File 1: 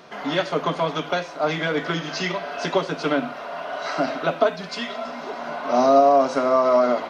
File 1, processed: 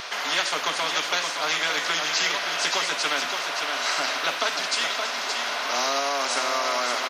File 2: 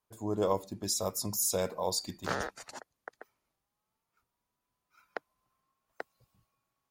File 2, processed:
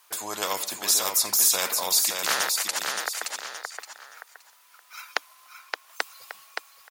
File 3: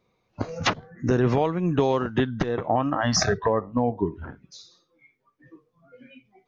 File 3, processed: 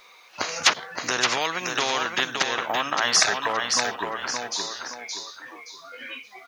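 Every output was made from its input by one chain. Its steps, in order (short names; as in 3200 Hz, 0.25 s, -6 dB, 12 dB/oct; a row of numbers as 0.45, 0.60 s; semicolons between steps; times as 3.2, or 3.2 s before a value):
HPF 1300 Hz 12 dB/oct; feedback echo 0.571 s, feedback 18%, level -9 dB; spectral compressor 2:1; match loudness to -24 LUFS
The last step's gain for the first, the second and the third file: +4.0, +11.0, +9.0 dB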